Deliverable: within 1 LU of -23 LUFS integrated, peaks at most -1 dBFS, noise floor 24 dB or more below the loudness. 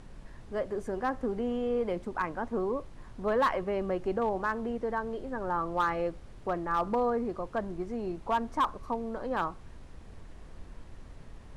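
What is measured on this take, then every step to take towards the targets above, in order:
clipped samples 0.3%; clipping level -20.5 dBFS; noise floor -49 dBFS; noise floor target -56 dBFS; loudness -32.0 LUFS; peak level -20.5 dBFS; loudness target -23.0 LUFS
-> clip repair -20.5 dBFS; noise print and reduce 7 dB; trim +9 dB

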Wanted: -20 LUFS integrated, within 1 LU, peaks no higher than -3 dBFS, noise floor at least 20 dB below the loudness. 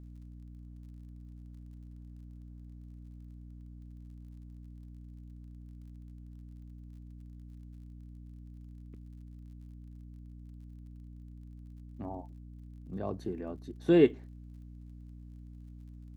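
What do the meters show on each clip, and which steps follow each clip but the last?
tick rate 27 per s; hum 60 Hz; highest harmonic 300 Hz; hum level -46 dBFS; loudness -31.0 LUFS; peak level -10.0 dBFS; loudness target -20.0 LUFS
-> de-click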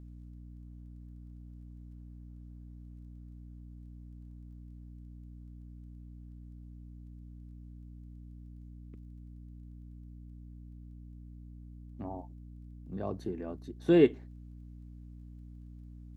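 tick rate 0 per s; hum 60 Hz; highest harmonic 300 Hz; hum level -46 dBFS
-> hum notches 60/120/180/240/300 Hz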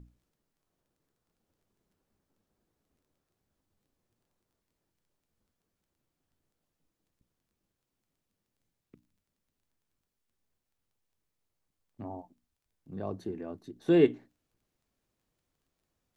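hum not found; loudness -29.0 LUFS; peak level -9.5 dBFS; loudness target -20.0 LUFS
-> trim +9 dB; peak limiter -3 dBFS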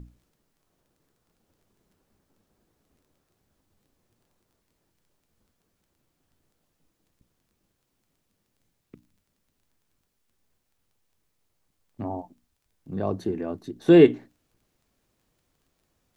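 loudness -20.5 LUFS; peak level -3.0 dBFS; noise floor -76 dBFS

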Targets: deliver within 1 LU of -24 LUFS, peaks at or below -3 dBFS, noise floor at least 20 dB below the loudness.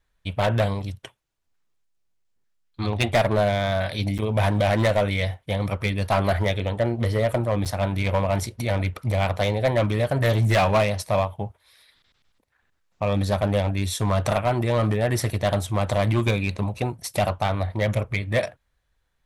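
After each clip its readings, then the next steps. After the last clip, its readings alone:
clipped samples 1.4%; clipping level -14.5 dBFS; dropouts 2; longest dropout 7.9 ms; loudness -23.5 LUFS; peak level -14.5 dBFS; loudness target -24.0 LUFS
-> clip repair -14.5 dBFS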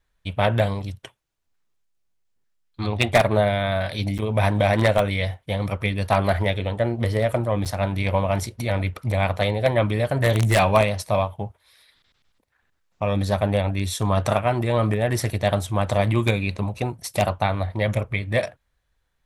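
clipped samples 0.0%; dropouts 2; longest dropout 7.9 ms
-> interpolate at 4.18/7.65 s, 7.9 ms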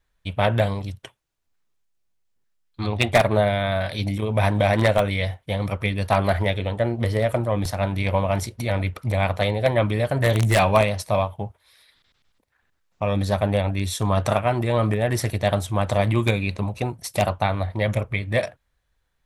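dropouts 0; loudness -22.5 LUFS; peak level -5.5 dBFS; loudness target -24.0 LUFS
-> trim -1.5 dB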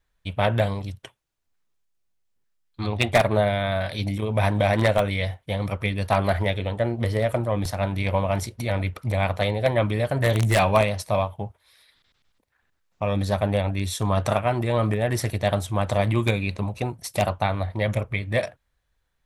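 loudness -24.0 LUFS; peak level -7.0 dBFS; noise floor -73 dBFS

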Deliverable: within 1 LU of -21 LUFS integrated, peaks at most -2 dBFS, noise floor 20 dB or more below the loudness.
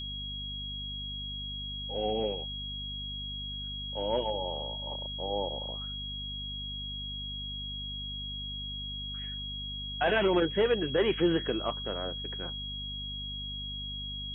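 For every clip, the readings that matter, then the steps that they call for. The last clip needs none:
hum 50 Hz; highest harmonic 250 Hz; hum level -40 dBFS; steady tone 3.3 kHz; tone level -37 dBFS; loudness -33.0 LUFS; peak level -15.5 dBFS; loudness target -21.0 LUFS
-> de-hum 50 Hz, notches 5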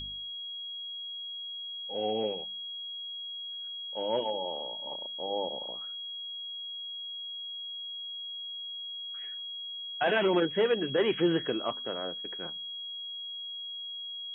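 hum not found; steady tone 3.3 kHz; tone level -37 dBFS
-> band-stop 3.3 kHz, Q 30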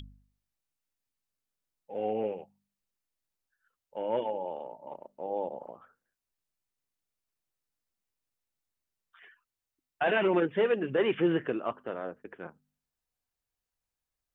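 steady tone not found; loudness -31.0 LUFS; peak level -16.5 dBFS; loudness target -21.0 LUFS
-> trim +10 dB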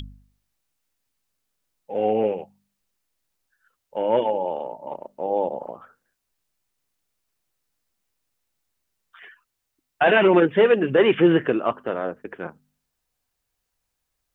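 loudness -21.0 LUFS; peak level -6.5 dBFS; noise floor -79 dBFS

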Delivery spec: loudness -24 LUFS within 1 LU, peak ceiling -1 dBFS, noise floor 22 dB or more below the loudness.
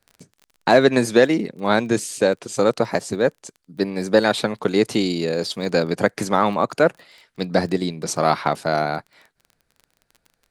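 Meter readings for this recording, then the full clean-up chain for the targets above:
tick rate 25 per s; loudness -20.5 LUFS; peak level -1.5 dBFS; loudness target -24.0 LUFS
-> de-click; trim -3.5 dB

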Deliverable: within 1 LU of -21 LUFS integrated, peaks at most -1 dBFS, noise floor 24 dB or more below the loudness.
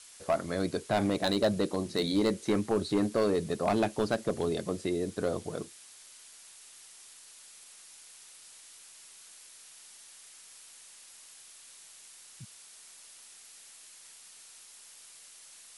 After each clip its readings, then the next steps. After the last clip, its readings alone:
clipped samples 0.5%; clipping level -20.0 dBFS; noise floor -53 dBFS; noise floor target -55 dBFS; loudness -30.5 LUFS; peak level -20.0 dBFS; loudness target -21.0 LUFS
-> clip repair -20 dBFS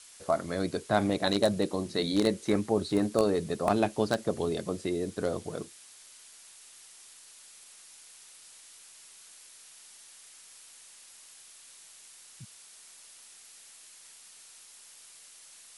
clipped samples 0.0%; noise floor -53 dBFS; noise floor target -54 dBFS
-> noise print and reduce 6 dB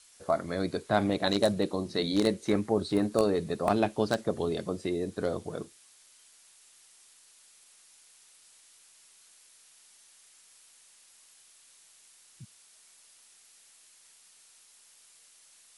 noise floor -59 dBFS; loudness -29.5 LUFS; peak level -11.0 dBFS; loudness target -21.0 LUFS
-> trim +8.5 dB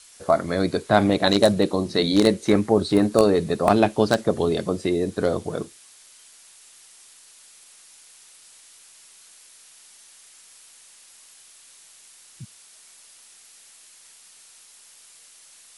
loudness -21.0 LUFS; peak level -2.5 dBFS; noise floor -51 dBFS

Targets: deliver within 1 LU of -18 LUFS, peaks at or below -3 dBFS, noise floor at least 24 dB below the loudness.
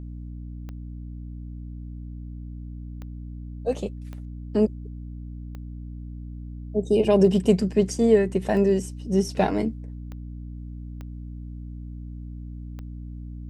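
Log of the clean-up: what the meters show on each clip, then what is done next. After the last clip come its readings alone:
clicks found 8; hum 60 Hz; highest harmonic 300 Hz; hum level -33 dBFS; loudness -23.0 LUFS; peak level -6.0 dBFS; loudness target -18.0 LUFS
-> de-click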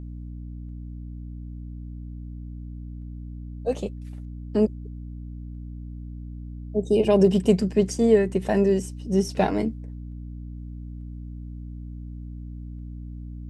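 clicks found 0; hum 60 Hz; highest harmonic 300 Hz; hum level -33 dBFS
-> hum notches 60/120/180/240/300 Hz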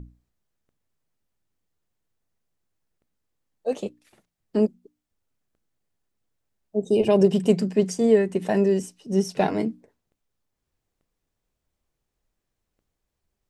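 hum not found; loudness -23.0 LUFS; peak level -5.5 dBFS; loudness target -18.0 LUFS
-> trim +5 dB; peak limiter -3 dBFS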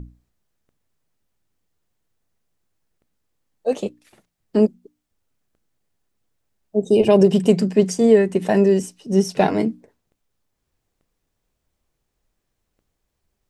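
loudness -18.5 LUFS; peak level -3.0 dBFS; noise floor -77 dBFS

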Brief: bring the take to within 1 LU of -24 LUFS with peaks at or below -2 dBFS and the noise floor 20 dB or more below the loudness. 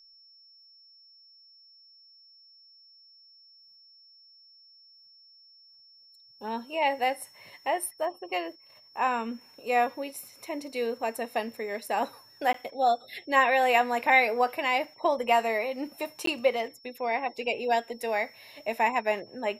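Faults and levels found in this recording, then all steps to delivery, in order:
dropouts 2; longest dropout 13 ms; steady tone 5.4 kHz; tone level -54 dBFS; loudness -28.0 LUFS; peak level -8.0 dBFS; loudness target -24.0 LUFS
-> interpolate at 12.53/16.26 s, 13 ms; band-stop 5.4 kHz, Q 30; trim +4 dB

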